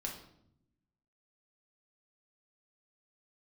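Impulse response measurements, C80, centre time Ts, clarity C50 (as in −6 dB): 10.0 dB, 28 ms, 6.5 dB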